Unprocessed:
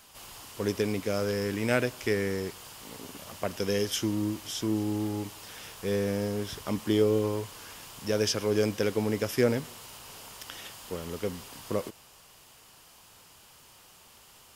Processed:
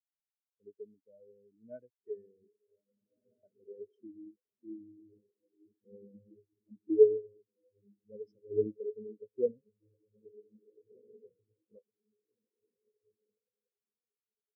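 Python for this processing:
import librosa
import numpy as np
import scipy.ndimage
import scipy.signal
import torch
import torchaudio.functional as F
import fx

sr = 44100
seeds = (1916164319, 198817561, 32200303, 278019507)

y = fx.echo_diffused(x, sr, ms=1683, feedback_pct=57, wet_db=-4)
y = fx.spectral_expand(y, sr, expansion=4.0)
y = y * 10.0 ** (-1.5 / 20.0)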